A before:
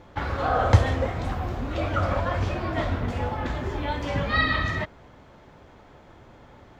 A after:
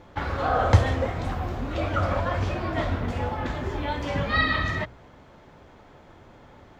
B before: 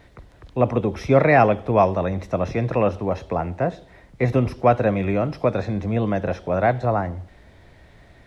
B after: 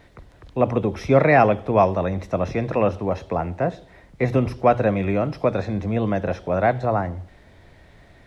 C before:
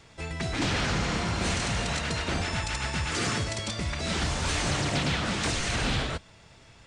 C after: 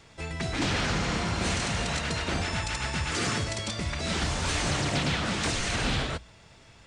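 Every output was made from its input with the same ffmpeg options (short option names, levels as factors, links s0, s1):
-af "bandreject=f=60:t=h:w=6,bandreject=f=120:t=h:w=6"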